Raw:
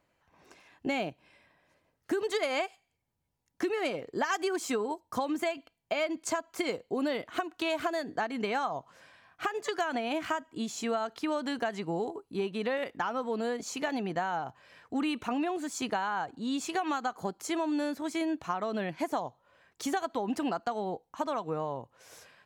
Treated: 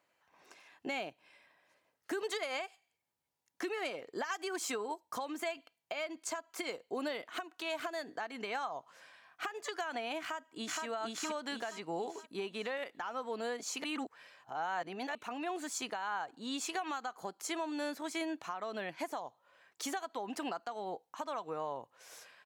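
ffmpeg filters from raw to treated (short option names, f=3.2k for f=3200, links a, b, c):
-filter_complex "[0:a]asplit=2[a][b];[b]afade=t=in:st=10.2:d=0.01,afade=t=out:st=10.84:d=0.01,aecho=0:1:470|940|1410|1880|2350:0.944061|0.377624|0.15105|0.0604199|0.024168[c];[a][c]amix=inputs=2:normalize=0,asplit=3[d][e][f];[d]atrim=end=13.842[g];[e]atrim=start=13.838:end=15.152,asetpts=PTS-STARTPTS,areverse[h];[f]atrim=start=15.148[i];[g][h]acrossfade=d=0.004:c1=hsin:c2=hsin[j];[j][i]acrossfade=d=0.004:c1=hsin:c2=hsin,highpass=f=650:p=1,alimiter=level_in=3.5dB:limit=-24dB:level=0:latency=1:release=289,volume=-3.5dB"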